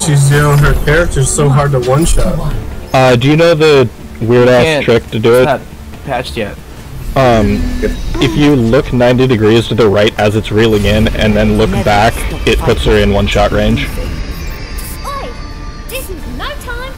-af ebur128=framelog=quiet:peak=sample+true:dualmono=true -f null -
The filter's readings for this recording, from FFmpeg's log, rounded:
Integrated loudness:
  I:          -7.4 LUFS
  Threshold: -18.2 LUFS
Loudness range:
  LRA:         4.5 LU
  Threshold: -28.0 LUFS
  LRA low:   -11.1 LUFS
  LRA high:   -6.5 LUFS
Sample peak:
  Peak:       -2.9 dBFS
True peak:
  Peak:       -2.4 dBFS